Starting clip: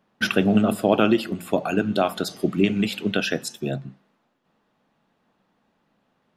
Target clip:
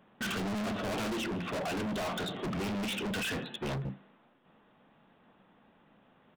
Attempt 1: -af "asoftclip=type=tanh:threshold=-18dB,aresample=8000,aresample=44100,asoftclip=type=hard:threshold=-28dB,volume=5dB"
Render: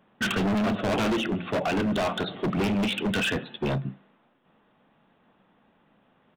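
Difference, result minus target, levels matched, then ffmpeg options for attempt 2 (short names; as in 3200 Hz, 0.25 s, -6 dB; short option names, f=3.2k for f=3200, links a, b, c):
hard clip: distortion -5 dB
-af "asoftclip=type=tanh:threshold=-18dB,aresample=8000,aresample=44100,asoftclip=type=hard:threshold=-38dB,volume=5dB"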